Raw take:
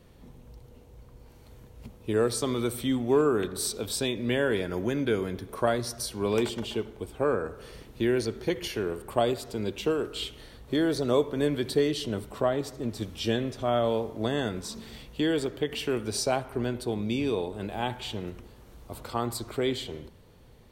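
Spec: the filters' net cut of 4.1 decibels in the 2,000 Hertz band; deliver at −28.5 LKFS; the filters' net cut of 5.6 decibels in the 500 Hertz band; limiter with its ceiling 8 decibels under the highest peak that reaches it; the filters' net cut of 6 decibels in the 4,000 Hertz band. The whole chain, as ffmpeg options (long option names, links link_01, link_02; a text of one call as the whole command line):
ffmpeg -i in.wav -af "equalizer=frequency=500:width_type=o:gain=-7,equalizer=frequency=2000:width_type=o:gain=-3.5,equalizer=frequency=4000:width_type=o:gain=-6.5,volume=5.5dB,alimiter=limit=-16dB:level=0:latency=1" out.wav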